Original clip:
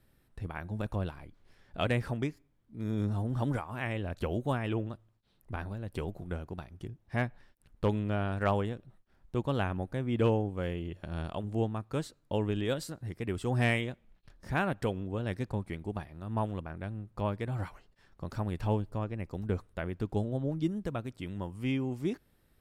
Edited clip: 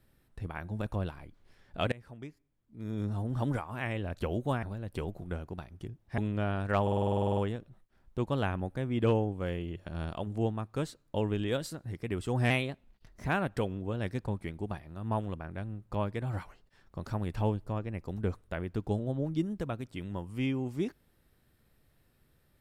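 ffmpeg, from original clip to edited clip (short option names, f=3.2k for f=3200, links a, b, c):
-filter_complex "[0:a]asplit=17[a][b][c][d][e][f][g][h][i][j][k][l][m][n][o][p][q];[a]atrim=end=1.92,asetpts=PTS-STARTPTS,afade=t=out:st=1.916:d=0.004:c=hsin:silence=0.0707946[r];[b]atrim=start=1.92:end=4.632,asetpts=PTS-STARTPTS,afade=t=in:d=1.53:silence=0.0707946[s];[c]atrim=start=5.628:end=7.182[t];[d]atrim=start=7.898:end=8.592[u];[e]atrim=start=8.538:end=8.592[v];[f]atrim=start=8.538:end=8.592[w];[g]atrim=start=8.538:end=8.592[x];[h]atrim=start=8.538:end=8.592[y];[i]atrim=start=8.538:end=8.592[z];[j]atrim=start=8.538:end=8.592[aa];[k]atrim=start=8.538:end=8.592[ab];[l]atrim=start=8.538:end=8.592[ac];[m]atrim=start=8.538:end=8.592[ad];[n]atrim=start=8.538:end=8.592[ae];[o]atrim=start=8.538:end=13.674[af];[p]atrim=start=13.67:end=14.53,asetpts=PTS-STARTPTS,asetrate=48951,aresample=44100[ag];[q]atrim=start=14.526[ah];[r][s]concat=n=2:v=0:a=1[ai];[ai][t]acrossfade=d=0.004:c1=hsin:c2=hsin[aj];[aj][u]acrossfade=d=0.004:c1=hsin:c2=hsin[ak];[ak][v]acrossfade=d=0.004:c1=hsin:c2=hsin[al];[al][w]acrossfade=d=0.004:c1=hsin:c2=hsin[am];[am][x]acrossfade=d=0.004:c1=hsin:c2=hsin[an];[an][y]acrossfade=d=0.004:c1=hsin:c2=hsin[ao];[ao][z]acrossfade=d=0.004:c1=hsin:c2=hsin[ap];[ap][aa]acrossfade=d=0.004:c1=hsin:c2=hsin[aq];[aq][ab]acrossfade=d=0.004:c1=hsin:c2=hsin[ar];[ar][ac]acrossfade=d=0.004:c1=hsin:c2=hsin[as];[as][ad]acrossfade=d=0.004:c1=hsin:c2=hsin[at];[at][ae]acrossfade=d=0.004:c1=hsin:c2=hsin[au];[au][af]acrossfade=d=0.004:c1=hsin:c2=hsin[av];[av][ag]acrossfade=d=0.004:c1=hsin:c2=hsin[aw];[aw][ah]acrossfade=d=0.004:c1=hsin:c2=hsin"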